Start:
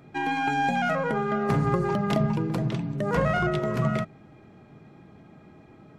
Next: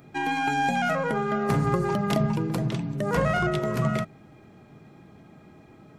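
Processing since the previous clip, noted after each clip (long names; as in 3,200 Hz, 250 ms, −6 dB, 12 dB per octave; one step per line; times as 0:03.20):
high-shelf EQ 6,600 Hz +10.5 dB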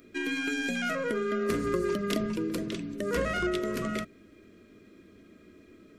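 phaser with its sweep stopped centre 340 Hz, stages 4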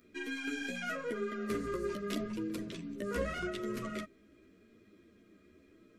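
multi-voice chorus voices 2, 0.81 Hz, delay 12 ms, depth 3.5 ms
level −4.5 dB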